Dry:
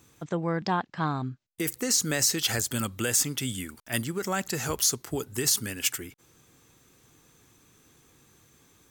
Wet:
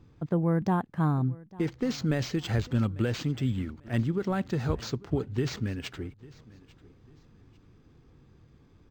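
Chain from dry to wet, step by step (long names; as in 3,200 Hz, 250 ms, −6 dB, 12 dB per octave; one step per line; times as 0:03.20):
spectral tilt −3.5 dB per octave
repeating echo 846 ms, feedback 30%, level −22 dB
linearly interpolated sample-rate reduction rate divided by 4×
level −3.5 dB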